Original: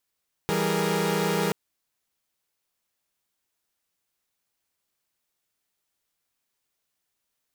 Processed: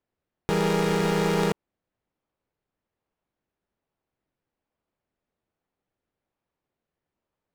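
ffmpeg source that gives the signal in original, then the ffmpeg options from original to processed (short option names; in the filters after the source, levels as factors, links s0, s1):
-f lavfi -i "aevalsrc='0.0501*((2*mod(164.81*t,1)-1)+(2*mod(196*t,1)-1)+(2*mod(415.3*t,1)-1)+(2*mod(466.16*t,1)-1))':d=1.03:s=44100"
-filter_complex "[0:a]asplit=2[s0][s1];[s1]acrusher=samples=29:mix=1:aa=0.000001:lfo=1:lforange=17.4:lforate=1.2,volume=0.376[s2];[s0][s2]amix=inputs=2:normalize=0,adynamicsmooth=sensitivity=6.5:basefreq=2100"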